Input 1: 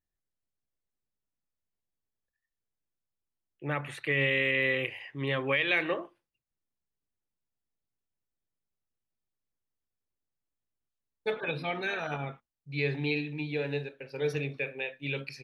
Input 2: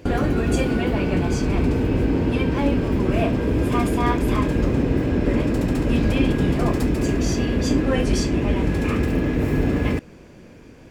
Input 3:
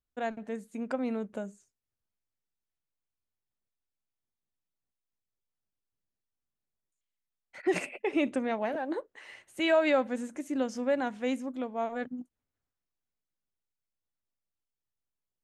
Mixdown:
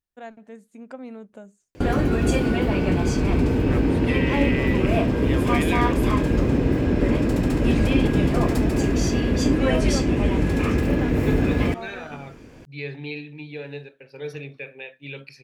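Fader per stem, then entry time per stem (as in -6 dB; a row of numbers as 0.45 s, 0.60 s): -2.5 dB, 0.0 dB, -5.5 dB; 0.00 s, 1.75 s, 0.00 s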